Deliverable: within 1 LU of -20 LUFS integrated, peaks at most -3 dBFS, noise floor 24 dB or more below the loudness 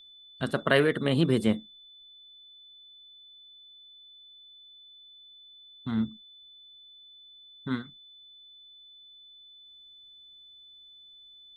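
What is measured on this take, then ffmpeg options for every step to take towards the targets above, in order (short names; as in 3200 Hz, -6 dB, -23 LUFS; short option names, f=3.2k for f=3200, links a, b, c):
steady tone 3500 Hz; tone level -50 dBFS; loudness -28.0 LUFS; peak -7.5 dBFS; loudness target -20.0 LUFS
-> -af "bandreject=f=3.5k:w=30"
-af "volume=8dB,alimiter=limit=-3dB:level=0:latency=1"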